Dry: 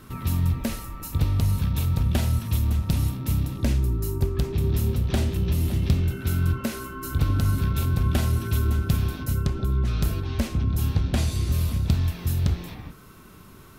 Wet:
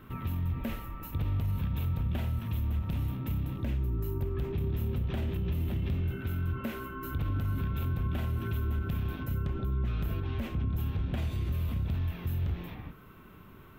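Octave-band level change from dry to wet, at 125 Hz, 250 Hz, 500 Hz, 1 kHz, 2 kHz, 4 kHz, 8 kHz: −8.0 dB, −7.5 dB, −7.0 dB, −6.5 dB, −7.0 dB, −12.5 dB, below −20 dB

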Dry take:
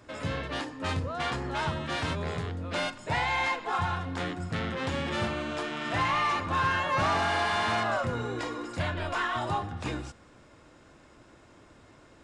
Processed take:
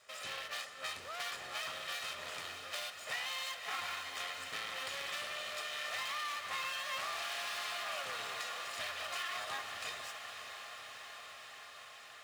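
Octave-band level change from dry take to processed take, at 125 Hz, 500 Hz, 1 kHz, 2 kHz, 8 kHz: −31.5, −15.0, −13.0, −8.0, +1.0 decibels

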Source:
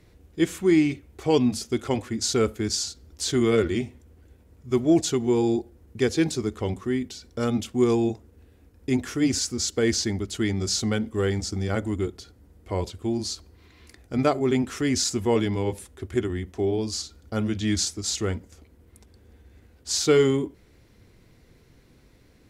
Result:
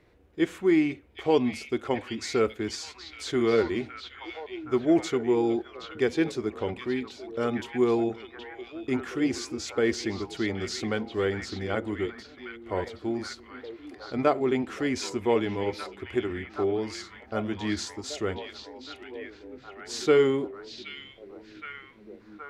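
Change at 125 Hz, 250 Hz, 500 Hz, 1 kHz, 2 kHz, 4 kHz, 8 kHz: −9.0, −3.5, −1.0, +0.5, +0.5, −6.5, −12.0 decibels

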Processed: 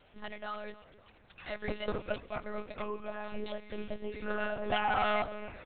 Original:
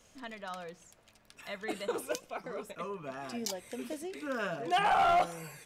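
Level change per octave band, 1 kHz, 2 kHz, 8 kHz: −4.5 dB, +0.5 dB, below −35 dB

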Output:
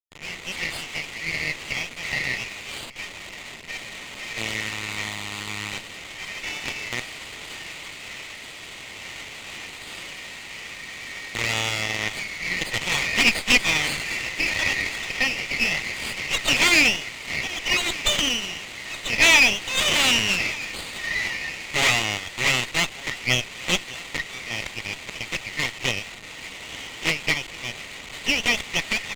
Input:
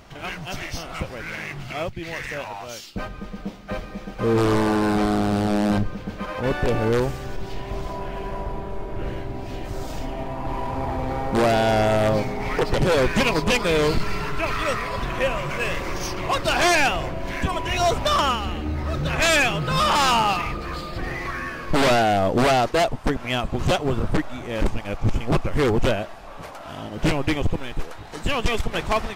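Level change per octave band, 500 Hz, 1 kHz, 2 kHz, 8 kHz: −13.0, −10.0, +4.5, +6.0 decibels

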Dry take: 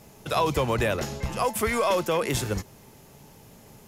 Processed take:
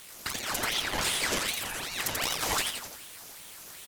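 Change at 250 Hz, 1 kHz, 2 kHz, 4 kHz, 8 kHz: −10.5, −7.5, +0.5, +5.5, +4.5 decibels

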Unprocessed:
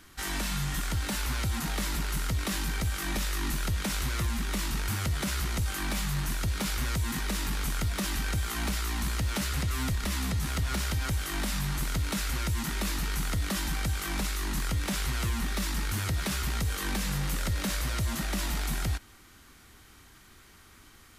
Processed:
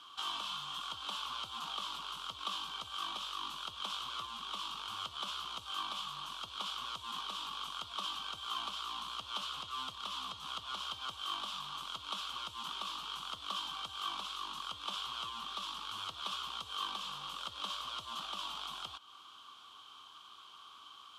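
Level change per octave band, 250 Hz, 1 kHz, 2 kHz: −24.5, −1.5, −14.0 decibels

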